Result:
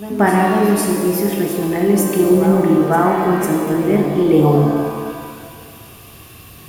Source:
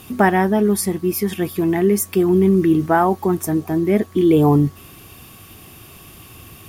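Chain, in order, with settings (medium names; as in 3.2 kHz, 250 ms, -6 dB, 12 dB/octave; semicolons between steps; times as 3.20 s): reverse echo 499 ms -11 dB; pitch-shifted reverb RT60 1.9 s, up +7 st, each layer -8 dB, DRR 0.5 dB; trim -1.5 dB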